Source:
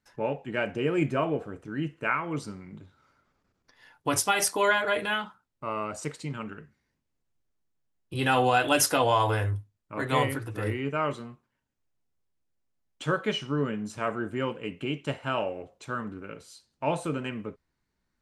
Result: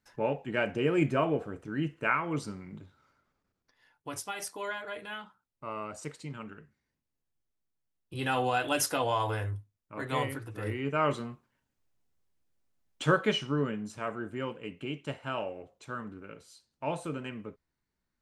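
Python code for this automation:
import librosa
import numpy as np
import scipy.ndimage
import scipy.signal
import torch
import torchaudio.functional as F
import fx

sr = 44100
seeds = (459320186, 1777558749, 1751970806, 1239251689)

y = fx.gain(x, sr, db=fx.line((2.78, -0.5), (4.12, -13.0), (5.02, -13.0), (5.65, -6.0), (10.59, -6.0), (11.14, 2.5), (13.1, 2.5), (14.03, -5.5)))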